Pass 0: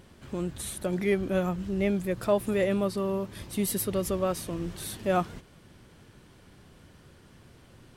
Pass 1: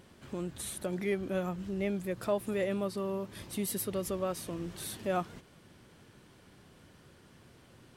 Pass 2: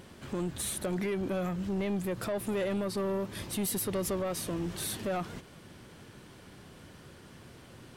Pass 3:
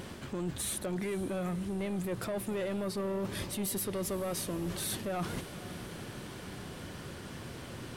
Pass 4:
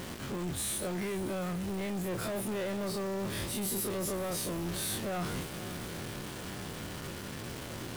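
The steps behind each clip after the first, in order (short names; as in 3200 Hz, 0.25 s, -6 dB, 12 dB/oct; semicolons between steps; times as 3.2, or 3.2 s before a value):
in parallel at -1.5 dB: compressor, threshold -34 dBFS, peak gain reduction 14.5 dB; on the sum: low shelf 69 Hz -10.5 dB; gain -7.5 dB
limiter -26.5 dBFS, peak gain reduction 8 dB; soft clip -33 dBFS, distortion -13 dB; gain +6.5 dB
reverse; compressor 6:1, threshold -41 dBFS, peak gain reduction 11 dB; reverse; diffused feedback echo 0.498 s, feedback 60%, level -16 dB; gain +7.5 dB
spectral dilation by 60 ms; in parallel at -5 dB: companded quantiser 2-bit; on the sum: gain -9 dB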